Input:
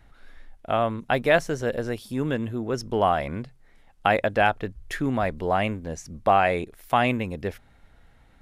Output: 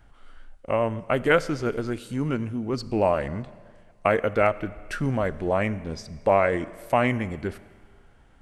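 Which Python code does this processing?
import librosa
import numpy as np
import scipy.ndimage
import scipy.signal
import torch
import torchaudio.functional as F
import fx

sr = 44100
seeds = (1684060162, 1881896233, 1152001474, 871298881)

y = fx.formant_shift(x, sr, semitones=-3)
y = fx.rev_schroeder(y, sr, rt60_s=1.8, comb_ms=29, drr_db=17.0)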